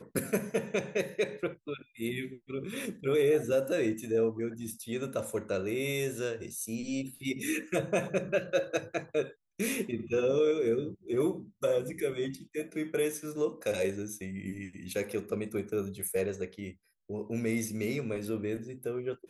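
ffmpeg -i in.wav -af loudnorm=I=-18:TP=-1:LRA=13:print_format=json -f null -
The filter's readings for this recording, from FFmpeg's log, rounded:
"input_i" : "-33.2",
"input_tp" : "-16.3",
"input_lra" : "4.6",
"input_thresh" : "-43.3",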